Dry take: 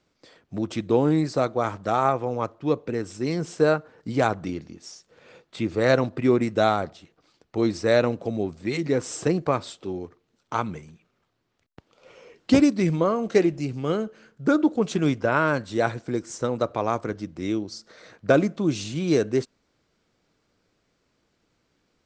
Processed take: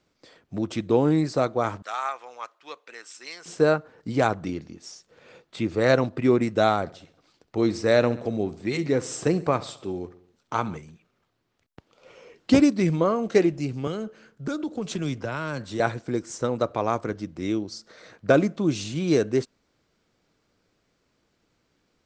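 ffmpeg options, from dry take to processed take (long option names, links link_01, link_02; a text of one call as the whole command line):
ffmpeg -i in.wav -filter_complex "[0:a]asettb=1/sr,asplit=3[link_01][link_02][link_03];[link_01]atrim=end=1.824[link_04];[link_02]atrim=start=1.82:end=3.46,asetpts=PTS-STARTPTS,afade=type=in:duration=0.004:curve=qsin,afade=type=out:start_time=1.636:duration=0.004:curve=qsin,highpass=1400[link_05];[link_03]atrim=start=3.456[link_06];[link_04][link_05]acrossfade=duration=0.004:curve1=hsin:curve2=qsin[link_07];[link_07][link_06]acrossfade=duration=0.004:curve1=qsin:curve2=hsin,asettb=1/sr,asplit=3[link_08][link_09][link_10];[link_08]atrim=end=6.804[link_11];[link_09]atrim=start=6.8:end=10.77,asetpts=PTS-STARTPTS,afade=type=in:duration=0.004:curve=qsin,afade=type=out:start_time=3.966:duration=0.004:curve=qsin,aecho=1:1:67|134|201|268|335:0.126|0.068|0.0367|0.0198|0.0107,atrim=end_sample=175077[link_12];[link_10]atrim=start=10.766[link_13];[link_11][link_12]acrossfade=duration=0.004:curve1=hsin:curve2=qsin[link_14];[link_14][link_13]acrossfade=duration=0.004:curve1=qsin:curve2=hsin,asettb=1/sr,asplit=3[link_15][link_16][link_17];[link_15]atrim=end=13.874[link_18];[link_16]atrim=start=13.87:end=15.8,asetpts=PTS-STARTPTS,afade=type=in:duration=0.004:curve=qsin,afade=type=out:start_time=1.926:duration=0.004:curve=qsin,acrossover=split=140|3000[link_19][link_20][link_21];[link_20]acompressor=threshold=-27dB:ratio=6:attack=3.2:release=140:knee=2.83:detection=peak[link_22];[link_19][link_22][link_21]amix=inputs=3:normalize=0[link_23];[link_17]atrim=start=15.796[link_24];[link_18][link_23]acrossfade=duration=0.004:curve1=hsin:curve2=qsin[link_25];[link_25][link_24]acrossfade=duration=0.004:curve1=qsin:curve2=hsin" out.wav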